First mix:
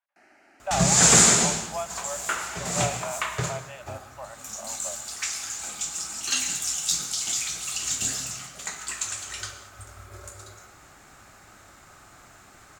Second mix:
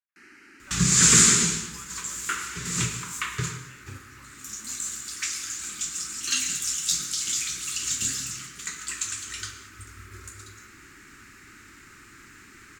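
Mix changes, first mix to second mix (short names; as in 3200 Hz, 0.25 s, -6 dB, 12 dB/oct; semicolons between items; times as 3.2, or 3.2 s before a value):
speech -7.0 dB; first sound +8.5 dB; master: add Butterworth band-stop 680 Hz, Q 0.83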